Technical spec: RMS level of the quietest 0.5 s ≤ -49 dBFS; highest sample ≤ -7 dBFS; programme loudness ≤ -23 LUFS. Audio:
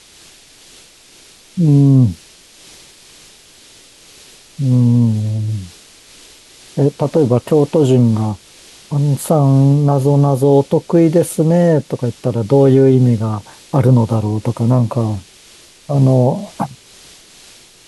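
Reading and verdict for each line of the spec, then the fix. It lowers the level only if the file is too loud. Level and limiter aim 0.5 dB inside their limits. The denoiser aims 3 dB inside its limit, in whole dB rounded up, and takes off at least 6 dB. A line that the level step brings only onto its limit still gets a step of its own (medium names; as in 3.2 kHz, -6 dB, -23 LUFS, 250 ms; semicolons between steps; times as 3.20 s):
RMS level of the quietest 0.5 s -44 dBFS: fail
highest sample -2.5 dBFS: fail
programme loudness -14.0 LUFS: fail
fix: trim -9.5 dB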